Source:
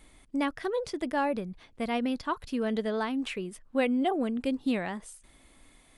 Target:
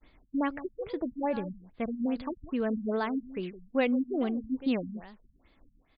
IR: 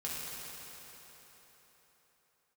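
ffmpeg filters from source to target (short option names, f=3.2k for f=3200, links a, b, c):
-af "agate=range=-33dB:threshold=-52dB:ratio=3:detection=peak,aecho=1:1:164:0.188,afftfilt=real='re*lt(b*sr/1024,230*pow(5100/230,0.5+0.5*sin(2*PI*2.4*pts/sr)))':imag='im*lt(b*sr/1024,230*pow(5100/230,0.5+0.5*sin(2*PI*2.4*pts/sr)))':win_size=1024:overlap=0.75"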